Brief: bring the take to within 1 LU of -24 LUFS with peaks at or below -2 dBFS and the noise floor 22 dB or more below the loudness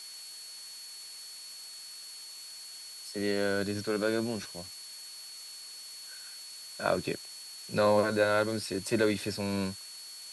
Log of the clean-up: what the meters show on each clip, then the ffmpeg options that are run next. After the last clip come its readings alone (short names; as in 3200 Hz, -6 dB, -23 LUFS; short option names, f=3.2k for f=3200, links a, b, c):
steady tone 4400 Hz; tone level -45 dBFS; noise floor -46 dBFS; noise floor target -56 dBFS; loudness -33.5 LUFS; peak -12.0 dBFS; loudness target -24.0 LUFS
-> -af "bandreject=f=4.4k:w=30"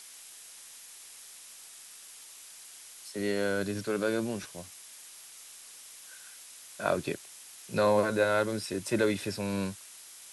steady tone none; noise floor -50 dBFS; noise floor target -53 dBFS
-> -af "afftdn=nr=6:nf=-50"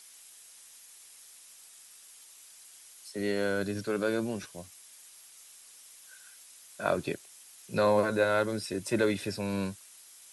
noise floor -54 dBFS; loudness -30.5 LUFS; peak -12.0 dBFS; loudness target -24.0 LUFS
-> -af "volume=6.5dB"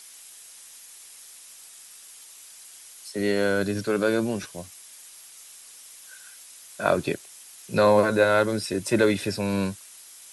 loudness -24.0 LUFS; peak -5.5 dBFS; noise floor -47 dBFS